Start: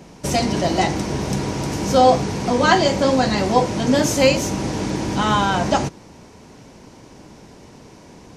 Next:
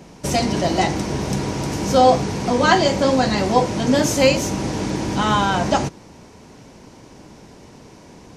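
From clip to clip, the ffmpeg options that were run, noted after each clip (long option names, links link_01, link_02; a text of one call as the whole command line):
ffmpeg -i in.wav -af anull out.wav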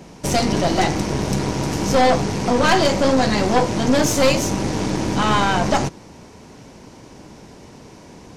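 ffmpeg -i in.wav -af "aeval=exprs='(tanh(5.62*val(0)+0.6)-tanh(0.6))/5.62':channel_layout=same,volume=4.5dB" out.wav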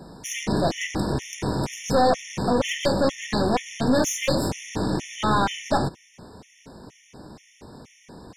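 ffmpeg -i in.wav -filter_complex "[0:a]asplit=2[link_01][link_02];[link_02]asoftclip=type=tanh:threshold=-17dB,volume=-3dB[link_03];[link_01][link_03]amix=inputs=2:normalize=0,afftfilt=real='re*gt(sin(2*PI*2.1*pts/sr)*(1-2*mod(floor(b*sr/1024/1800),2)),0)':imag='im*gt(sin(2*PI*2.1*pts/sr)*(1-2*mod(floor(b*sr/1024/1800),2)),0)':win_size=1024:overlap=0.75,volume=-6dB" out.wav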